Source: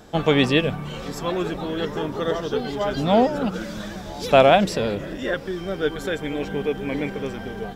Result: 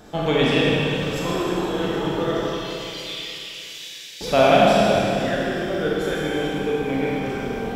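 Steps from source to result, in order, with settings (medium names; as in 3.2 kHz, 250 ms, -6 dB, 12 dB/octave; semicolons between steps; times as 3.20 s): 2.46–4.21 s: steep high-pass 2.1 kHz 48 dB/octave; in parallel at -1 dB: compression, threshold -33 dBFS, peak gain reduction 21.5 dB; on the sum: Schroeder reverb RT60 2.9 s, combs from 26 ms, DRR -5.5 dB; trim -6 dB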